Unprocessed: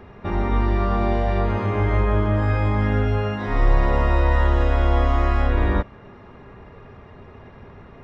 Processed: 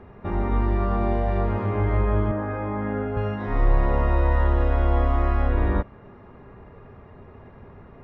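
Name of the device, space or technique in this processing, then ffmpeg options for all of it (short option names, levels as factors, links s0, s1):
through cloth: -filter_complex "[0:a]highshelf=f=3600:g=-17,asettb=1/sr,asplit=3[s0][s1][s2];[s0]atrim=end=2.314[s3];[s1]atrim=start=2.31:end=3.17,asetpts=PTS-STARTPTS,afade=t=in:d=0.004:c=qsin,afade=t=out:st=0.856:d=0.004:c=qsin,acrossover=split=150 2300:gain=0.178 1 0.2[s4][s5][s6];[s4][s5][s6]amix=inputs=3:normalize=0[s7];[s2]atrim=start=3.166[s8];[s3][s7]acrossfade=d=0.004:c1=hsin:c2=qsin[s9];[s9][s8]acrossfade=d=0.004:c1=qsin:c2=hsin,volume=0.794"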